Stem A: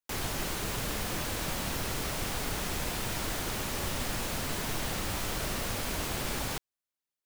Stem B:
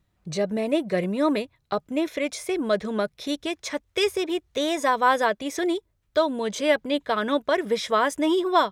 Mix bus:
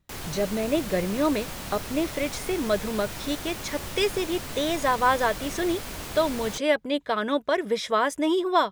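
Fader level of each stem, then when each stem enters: −2.5, −1.5 decibels; 0.00, 0.00 seconds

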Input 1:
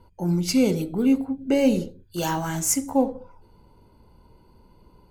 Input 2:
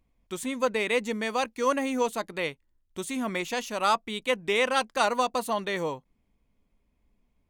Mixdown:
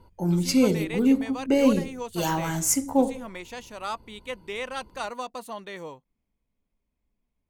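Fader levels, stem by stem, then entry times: −0.5, −8.5 decibels; 0.00, 0.00 seconds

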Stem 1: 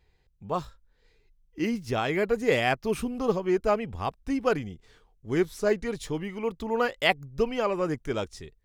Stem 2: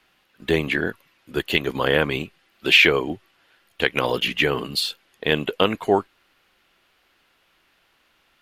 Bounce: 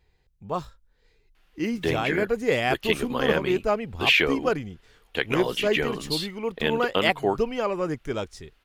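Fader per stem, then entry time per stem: +0.5, −5.5 decibels; 0.00, 1.35 seconds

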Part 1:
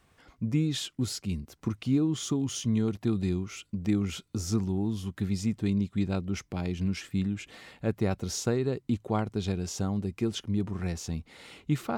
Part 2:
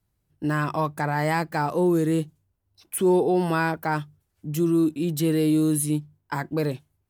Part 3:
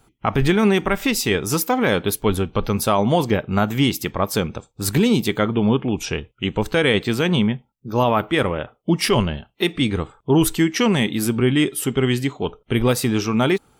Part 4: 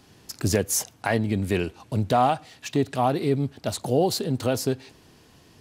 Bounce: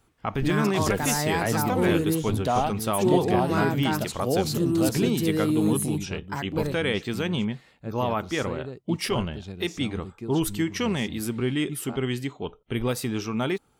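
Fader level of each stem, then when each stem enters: −8.0, −3.5, −8.5, −4.0 decibels; 0.00, 0.00, 0.00, 0.35 seconds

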